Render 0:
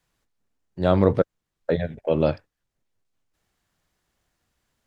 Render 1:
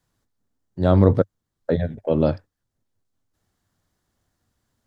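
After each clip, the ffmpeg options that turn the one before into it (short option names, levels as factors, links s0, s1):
-af "equalizer=f=100:t=o:w=0.67:g=8,equalizer=f=250:t=o:w=0.67:g=5,equalizer=f=2500:t=o:w=0.67:g=-7"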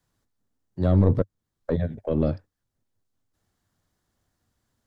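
-filter_complex "[0:a]aeval=exprs='(tanh(2*val(0)+0.45)-tanh(0.45))/2':c=same,acrossover=split=410[s0][s1];[s1]acompressor=threshold=0.0224:ratio=2[s2];[s0][s2]amix=inputs=2:normalize=0"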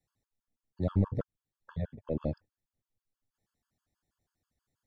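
-af "afftfilt=real='re*gt(sin(2*PI*6.2*pts/sr)*(1-2*mod(floor(b*sr/1024/870),2)),0)':imag='im*gt(sin(2*PI*6.2*pts/sr)*(1-2*mod(floor(b*sr/1024/870),2)),0)':win_size=1024:overlap=0.75,volume=0.447"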